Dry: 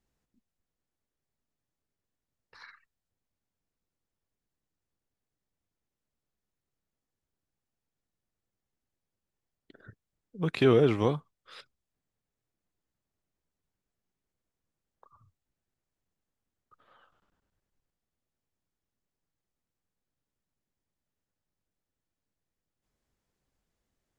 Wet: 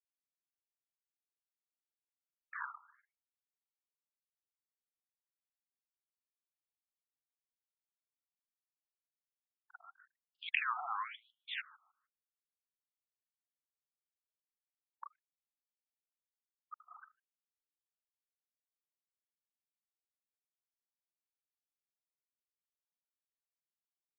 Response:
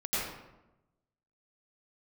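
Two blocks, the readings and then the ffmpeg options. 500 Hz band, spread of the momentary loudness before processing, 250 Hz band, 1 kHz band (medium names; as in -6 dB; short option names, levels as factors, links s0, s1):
-37.0 dB, 12 LU, under -40 dB, -1.5 dB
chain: -filter_complex "[0:a]acompressor=threshold=0.0631:ratio=6,anlmdn=0.000158,highshelf=f=4400:g=8,alimiter=level_in=1.26:limit=0.0631:level=0:latency=1:release=105,volume=0.794,asplit=2[s0][s1];[s1]adelay=152,lowpass=f=1100:p=1,volume=0.178,asplit=2[s2][s3];[s3]adelay=152,lowpass=f=1100:p=1,volume=0.35,asplit=2[s4][s5];[s5]adelay=152,lowpass=f=1100:p=1,volume=0.35[s6];[s2][s4][s6]amix=inputs=3:normalize=0[s7];[s0][s7]amix=inputs=2:normalize=0,adynamicsmooth=sensitivity=3.5:basefreq=4900,lowshelf=f=190:g=3.5,afftfilt=real='re*between(b*sr/1024,960*pow(3900/960,0.5+0.5*sin(2*PI*0.99*pts/sr))/1.41,960*pow(3900/960,0.5+0.5*sin(2*PI*0.99*pts/sr))*1.41)':imag='im*between(b*sr/1024,960*pow(3900/960,0.5+0.5*sin(2*PI*0.99*pts/sr))/1.41,960*pow(3900/960,0.5+0.5*sin(2*PI*0.99*pts/sr))*1.41)':win_size=1024:overlap=0.75,volume=4.47"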